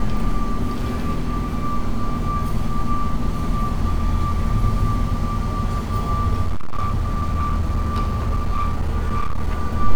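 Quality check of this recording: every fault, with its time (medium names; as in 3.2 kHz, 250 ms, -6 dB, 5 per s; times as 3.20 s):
6.46–9.49 s: clipped -15.5 dBFS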